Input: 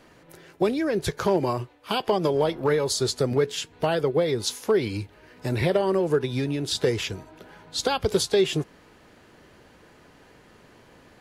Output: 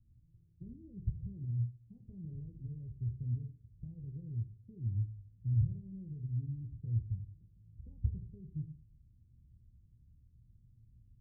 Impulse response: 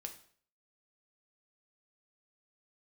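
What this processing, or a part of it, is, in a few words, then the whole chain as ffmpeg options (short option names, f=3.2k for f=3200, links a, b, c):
club heard from the street: -filter_complex "[0:a]alimiter=limit=-15.5dB:level=0:latency=1,lowpass=f=120:w=0.5412,lowpass=f=120:w=1.3066[a];[1:a]atrim=start_sample=2205[b];[a][b]afir=irnorm=-1:irlink=0,volume=5dB"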